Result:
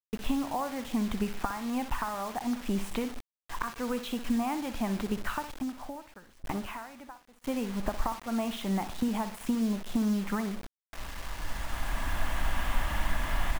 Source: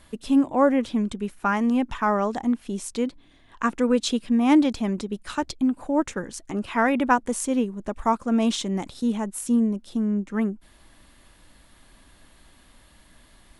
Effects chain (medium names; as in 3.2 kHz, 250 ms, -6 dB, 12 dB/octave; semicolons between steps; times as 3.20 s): recorder AGC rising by 11 dB/s; high-order bell 1.5 kHz +16 dB 2.7 oct; compression 10:1, threshold -22 dBFS, peak gain reduction 23 dB; feedback delay 61 ms, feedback 38%, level -12 dB; gate with hold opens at -28 dBFS; tilt EQ -3.5 dB/octave; feedback comb 74 Hz, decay 0.9 s, harmonics all, mix 30%; bit crusher 6-bit; 5.44–7.47 s: sawtooth tremolo in dB decaying 1 Hz, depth 21 dB; trim -7 dB